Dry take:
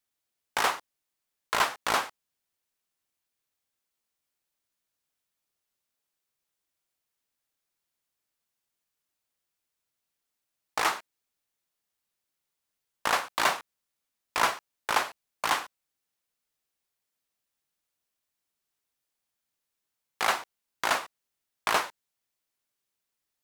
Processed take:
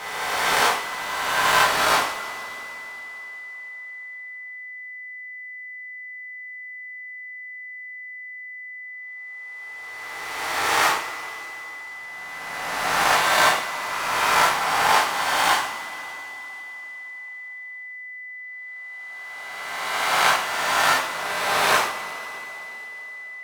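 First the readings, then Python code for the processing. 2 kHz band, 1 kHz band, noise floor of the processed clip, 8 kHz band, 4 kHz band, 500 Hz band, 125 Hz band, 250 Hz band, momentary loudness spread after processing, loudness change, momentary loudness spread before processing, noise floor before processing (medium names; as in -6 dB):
+11.5 dB, +10.0 dB, -37 dBFS, +10.0 dB, +10.5 dB, +10.0 dB, +12.0 dB, +8.5 dB, 17 LU, +7.0 dB, 11 LU, -85 dBFS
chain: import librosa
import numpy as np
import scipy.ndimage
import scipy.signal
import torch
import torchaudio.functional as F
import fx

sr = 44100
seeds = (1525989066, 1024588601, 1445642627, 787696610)

y = fx.spec_swells(x, sr, rise_s=2.11)
y = y + 10.0 ** (-39.0 / 20.0) * np.sin(2.0 * np.pi * 2000.0 * np.arange(len(y)) / sr)
y = fx.rev_double_slope(y, sr, seeds[0], early_s=0.44, late_s=3.8, knee_db=-18, drr_db=-3.5)
y = F.gain(torch.from_numpy(y), -1.5).numpy()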